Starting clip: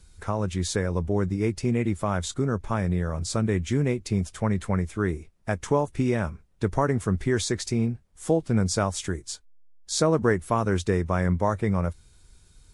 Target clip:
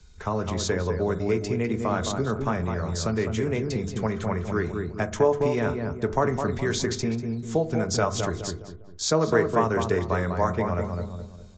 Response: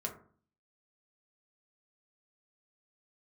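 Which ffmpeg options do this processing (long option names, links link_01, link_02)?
-filter_complex "[0:a]asplit=2[link_01][link_02];[link_02]adelay=226,lowpass=frequency=1400:poles=1,volume=-5dB,asplit=2[link_03][link_04];[link_04]adelay=226,lowpass=frequency=1400:poles=1,volume=0.39,asplit=2[link_05][link_06];[link_06]adelay=226,lowpass=frequency=1400:poles=1,volume=0.39,asplit=2[link_07][link_08];[link_08]adelay=226,lowpass=frequency=1400:poles=1,volume=0.39,asplit=2[link_09][link_10];[link_10]adelay=226,lowpass=frequency=1400:poles=1,volume=0.39[link_11];[link_01][link_03][link_05][link_07][link_09][link_11]amix=inputs=6:normalize=0,asplit=2[link_12][link_13];[1:a]atrim=start_sample=2205[link_14];[link_13][link_14]afir=irnorm=-1:irlink=0,volume=-4dB[link_15];[link_12][link_15]amix=inputs=2:normalize=0,atempo=1.1,acrossover=split=360[link_16][link_17];[link_16]acompressor=threshold=-24dB:ratio=6[link_18];[link_18][link_17]amix=inputs=2:normalize=0,acrossover=split=150|2800[link_19][link_20][link_21];[link_19]acrusher=samples=8:mix=1:aa=0.000001:lfo=1:lforange=8:lforate=1.1[link_22];[link_22][link_20][link_21]amix=inputs=3:normalize=0,volume=-2.5dB" -ar 16000 -c:a sbc -b:a 64k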